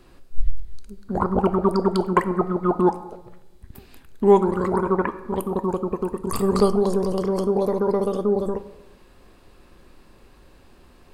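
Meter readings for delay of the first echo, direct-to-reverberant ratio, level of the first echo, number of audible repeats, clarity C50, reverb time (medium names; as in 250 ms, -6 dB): no echo, 11.5 dB, no echo, no echo, 14.0 dB, 0.95 s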